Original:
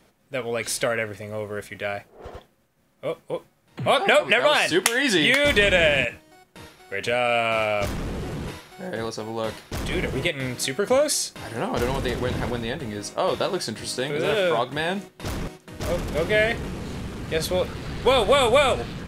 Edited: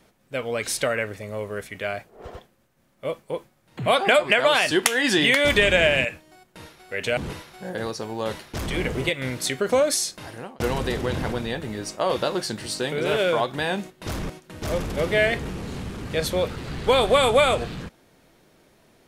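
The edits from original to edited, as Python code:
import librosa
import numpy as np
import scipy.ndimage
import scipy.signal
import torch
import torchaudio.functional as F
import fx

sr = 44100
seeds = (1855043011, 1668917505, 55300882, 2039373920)

y = fx.edit(x, sr, fx.cut(start_s=7.17, length_s=1.18),
    fx.fade_out_span(start_s=11.31, length_s=0.47), tone=tone)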